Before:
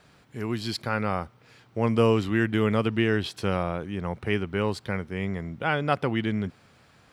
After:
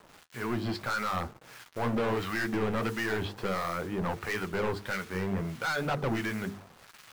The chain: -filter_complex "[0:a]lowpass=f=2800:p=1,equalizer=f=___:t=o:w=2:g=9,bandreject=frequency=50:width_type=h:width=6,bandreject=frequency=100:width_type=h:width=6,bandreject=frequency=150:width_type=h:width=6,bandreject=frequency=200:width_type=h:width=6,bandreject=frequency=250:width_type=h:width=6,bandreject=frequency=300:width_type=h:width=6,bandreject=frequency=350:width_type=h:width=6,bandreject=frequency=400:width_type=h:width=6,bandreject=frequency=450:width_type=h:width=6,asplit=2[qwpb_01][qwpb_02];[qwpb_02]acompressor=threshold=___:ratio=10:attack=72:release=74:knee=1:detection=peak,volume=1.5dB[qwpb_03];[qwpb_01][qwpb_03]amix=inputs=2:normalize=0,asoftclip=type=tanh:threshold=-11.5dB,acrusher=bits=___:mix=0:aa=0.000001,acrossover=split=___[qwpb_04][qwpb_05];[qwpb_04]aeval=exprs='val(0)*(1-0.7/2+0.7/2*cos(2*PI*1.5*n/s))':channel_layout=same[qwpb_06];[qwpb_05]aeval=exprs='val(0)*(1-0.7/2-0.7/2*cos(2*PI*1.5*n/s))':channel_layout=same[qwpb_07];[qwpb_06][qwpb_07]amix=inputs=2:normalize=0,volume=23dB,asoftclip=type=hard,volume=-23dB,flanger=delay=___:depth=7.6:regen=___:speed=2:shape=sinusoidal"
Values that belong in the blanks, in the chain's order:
1200, -29dB, 6, 1100, 4.8, -41